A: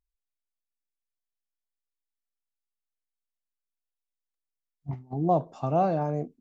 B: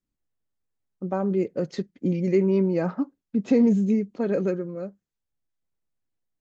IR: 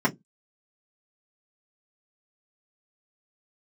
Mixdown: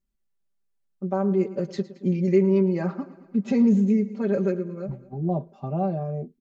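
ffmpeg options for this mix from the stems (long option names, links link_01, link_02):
-filter_complex "[0:a]lowpass=2700,equalizer=frequency=1400:width_type=o:width=2.5:gain=-11.5,volume=-0.5dB[link_01];[1:a]volume=-3.5dB,asplit=2[link_02][link_03];[link_03]volume=-17dB,aecho=0:1:111|222|333|444|555|666|777|888|999:1|0.59|0.348|0.205|0.121|0.0715|0.0422|0.0249|0.0147[link_04];[link_01][link_02][link_04]amix=inputs=3:normalize=0,aecho=1:1:5.1:0.88"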